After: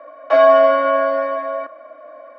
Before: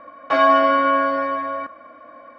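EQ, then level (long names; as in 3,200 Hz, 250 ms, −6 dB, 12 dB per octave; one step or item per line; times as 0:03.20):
Butterworth high-pass 270 Hz
parametric band 620 Hz +14.5 dB 0.36 octaves
parametric band 1,800 Hz +2 dB
−3.0 dB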